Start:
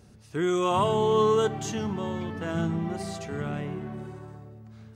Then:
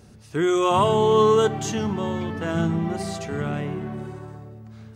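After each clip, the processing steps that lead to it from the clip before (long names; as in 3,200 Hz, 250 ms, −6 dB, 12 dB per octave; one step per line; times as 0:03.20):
mains-hum notches 60/120/180 Hz
level +5 dB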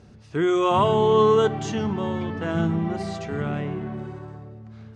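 high-frequency loss of the air 100 metres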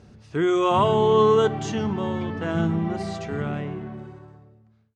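fade-out on the ending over 1.63 s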